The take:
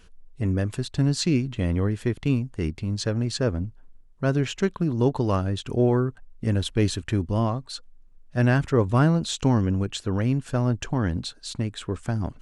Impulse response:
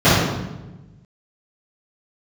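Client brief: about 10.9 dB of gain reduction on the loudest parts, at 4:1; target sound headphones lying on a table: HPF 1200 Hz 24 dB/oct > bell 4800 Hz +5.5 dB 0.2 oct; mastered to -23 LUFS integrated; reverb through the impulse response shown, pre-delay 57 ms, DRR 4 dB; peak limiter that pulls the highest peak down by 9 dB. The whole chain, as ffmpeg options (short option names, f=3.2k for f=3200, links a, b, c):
-filter_complex "[0:a]acompressor=threshold=-29dB:ratio=4,alimiter=level_in=3dB:limit=-24dB:level=0:latency=1,volume=-3dB,asplit=2[a][b];[1:a]atrim=start_sample=2205,adelay=57[c];[b][c]afir=irnorm=-1:irlink=0,volume=-32dB[d];[a][d]amix=inputs=2:normalize=0,highpass=f=1.2k:w=0.5412,highpass=f=1.2k:w=1.3066,equalizer=f=4.8k:t=o:w=0.2:g=5.5,volume=19.5dB"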